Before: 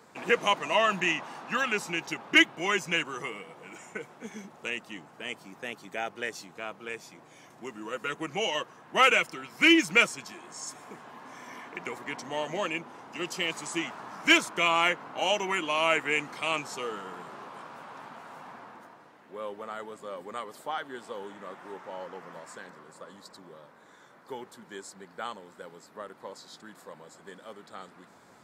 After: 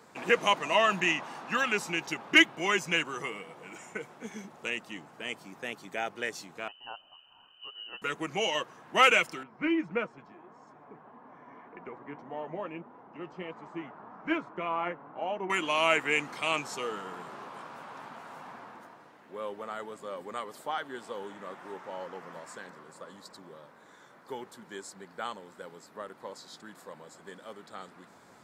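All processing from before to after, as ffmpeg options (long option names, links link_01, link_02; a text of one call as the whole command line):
ffmpeg -i in.wav -filter_complex "[0:a]asettb=1/sr,asplit=3[link_01][link_02][link_03];[link_01]atrim=end=6.684[link_04];[link_02]atrim=start=6.68:end=8.02,asetpts=PTS-STARTPTS,afade=type=in:duration=0.004:curve=qsin,afade=type=out:start_time=1.336:duration=0.004:curve=qsin,asuperstop=centerf=1000:order=4:qfactor=0.62,equalizer=frequency=440:width_type=o:width=0.48:gain=-10,lowpass=frequency=2700:width_type=q:width=0.5098,lowpass=frequency=2700:width_type=q:width=0.6013,lowpass=frequency=2700:width_type=q:width=0.9,lowpass=frequency=2700:width_type=q:width=2.563,afreqshift=-3200[link_05];[link_03]atrim=start=8.016[link_06];[link_04][link_05]acrossfade=duration=0.004:curve1=hsin:curve2=qsin[link_07];[link_07][link_06]acrossfade=duration=0.004:curve1=qsin:curve2=hsin,asettb=1/sr,asplit=3[link_08][link_09][link_10];[link_08]atrim=end=9.434[link_11];[link_09]atrim=start=9.43:end=15.5,asetpts=PTS-STARTPTS,afade=type=in:duration=0.004:curve=qsin,afade=type=out:start_time=6.066:duration=0.004:curve=qsin,lowpass=1200,flanger=delay=4:depth=3.2:regen=62:speed=1.7:shape=sinusoidal[link_12];[link_10]atrim=start=15.496[link_13];[link_11][link_12]acrossfade=duration=0.004:curve1=hsin:curve2=qsin[link_14];[link_14][link_13]acrossfade=duration=0.004:curve1=qsin:curve2=hsin" out.wav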